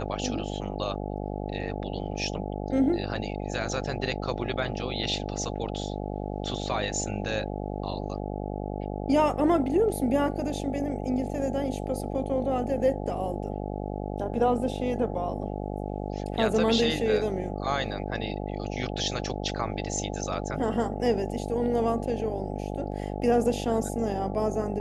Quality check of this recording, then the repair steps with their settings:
mains buzz 50 Hz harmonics 17 −33 dBFS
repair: hum removal 50 Hz, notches 17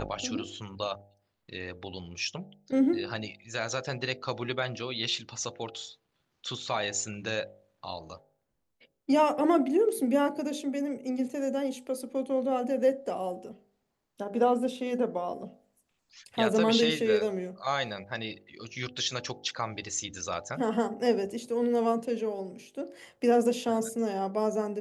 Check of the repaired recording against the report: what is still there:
none of them is left

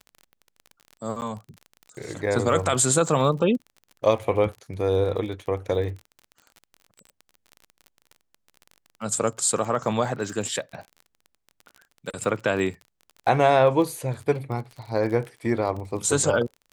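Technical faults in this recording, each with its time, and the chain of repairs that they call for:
surface crackle 34 per second −34 dBFS
0:01.21–0:01.22: drop-out 9.8 ms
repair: click removal
repair the gap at 0:01.21, 9.8 ms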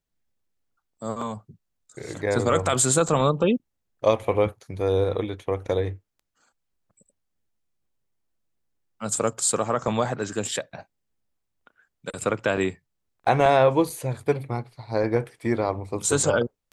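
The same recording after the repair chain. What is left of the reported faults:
none of them is left

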